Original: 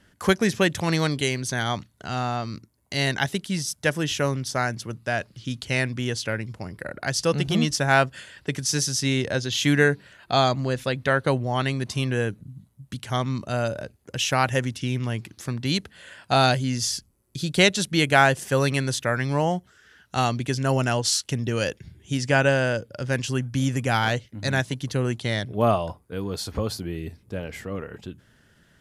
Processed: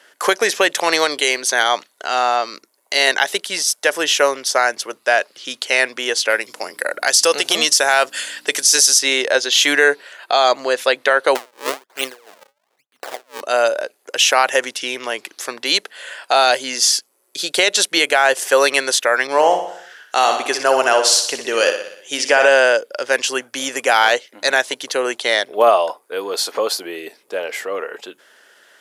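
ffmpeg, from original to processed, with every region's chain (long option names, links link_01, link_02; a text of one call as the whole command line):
ffmpeg -i in.wav -filter_complex "[0:a]asettb=1/sr,asplit=3[link_01][link_02][link_03];[link_01]atrim=end=6.304[link_04];[link_02]atrim=start=6.3:end=8.99,asetpts=PTS-STARTPTS,afade=type=in:duration=0.004:curve=qsin,afade=type=out:start_time=2.686:duration=0.004:curve=qsin,aeval=exprs='val(0)+0.0112*(sin(2*PI*60*n/s)+sin(2*PI*2*60*n/s)/2+sin(2*PI*3*60*n/s)/3+sin(2*PI*4*60*n/s)/4+sin(2*PI*5*60*n/s)/5)':channel_layout=same,highshelf=frequency=4000:gain=11.5[link_05];[link_03]atrim=start=8.986[link_06];[link_04][link_05]acrossfade=duration=0.004:curve1=hsin:curve2=qsin[link_07];[link_07][link_06]acrossfade=duration=0.004:curve1=qsin:curve2=hsin,asettb=1/sr,asplit=3[link_08][link_09][link_10];[link_08]atrim=end=11.354[link_11];[link_09]atrim=start=11.35:end=13.41,asetpts=PTS-STARTPTS,afade=type=in:duration=0.004:curve=qsin,afade=type=out:start_time=2.056:duration=0.004:curve=qsin,acrusher=samples=36:mix=1:aa=0.000001:lfo=1:lforange=57.6:lforate=1.1,aeval=exprs='val(0)*pow(10,-35*(0.5-0.5*cos(2*PI*2.9*n/s))/20)':channel_layout=same[link_12];[link_10]atrim=start=13.406[link_13];[link_11][link_12]acrossfade=duration=0.004:curve1=hsin:curve2=qsin[link_14];[link_14][link_13]acrossfade=duration=0.004:curve1=qsin:curve2=hsin,asettb=1/sr,asplit=3[link_15][link_16][link_17];[link_15]atrim=end=19.274[link_18];[link_16]atrim=start=19.27:end=22.49,asetpts=PTS-STARTPTS,afade=type=in:duration=0.004:curve=qsin,afade=type=out:start_time=3.216:duration=0.004:curve=qsin,aecho=1:1:61|122|183|244|305|366:0.376|0.203|0.11|0.0592|0.032|0.0173,atrim=end_sample=142002,adynamicequalizer=threshold=0.0141:dfrequency=2300:dqfactor=0.7:tfrequency=2300:tqfactor=0.7:attack=5:release=100:ratio=0.375:range=1.5:mode=cutabove:tftype=highshelf[link_19];[link_17]atrim=start=22.486[link_20];[link_18][link_19]acrossfade=duration=0.004:curve1=hsin:curve2=qsin[link_21];[link_21][link_20]acrossfade=duration=0.004:curve1=qsin:curve2=hsin,highpass=frequency=440:width=0.5412,highpass=frequency=440:width=1.3066,alimiter=level_in=13.5dB:limit=-1dB:release=50:level=0:latency=1,volume=-1.5dB" out.wav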